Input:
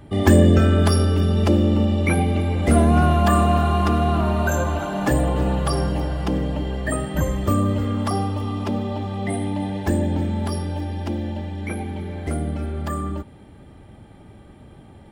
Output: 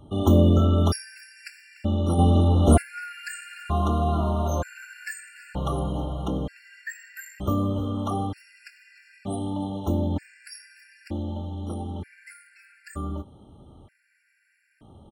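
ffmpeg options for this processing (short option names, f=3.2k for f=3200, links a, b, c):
-filter_complex "[0:a]asplit=2[a][b];[b]adelay=24,volume=-13dB[c];[a][c]amix=inputs=2:normalize=0,asplit=3[d][e][f];[d]afade=t=out:st=2.18:d=0.02[g];[e]acontrast=71,afade=t=in:st=2.18:d=0.02,afade=t=out:st=2.81:d=0.02[h];[f]afade=t=in:st=2.81:d=0.02[i];[g][h][i]amix=inputs=3:normalize=0,afftfilt=real='re*gt(sin(2*PI*0.54*pts/sr)*(1-2*mod(floor(b*sr/1024/1400),2)),0)':imag='im*gt(sin(2*PI*0.54*pts/sr)*(1-2*mod(floor(b*sr/1024/1400),2)),0)':win_size=1024:overlap=0.75,volume=-4.5dB"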